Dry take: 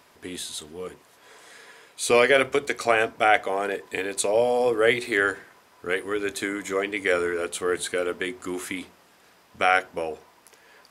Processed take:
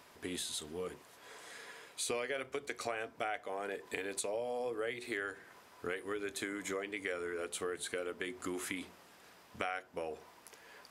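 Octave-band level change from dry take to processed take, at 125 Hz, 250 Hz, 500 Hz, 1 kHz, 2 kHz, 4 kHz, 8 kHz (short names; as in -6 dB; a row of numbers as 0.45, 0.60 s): -12.0, -12.0, -15.5, -17.0, -16.0, -12.0, -9.5 dB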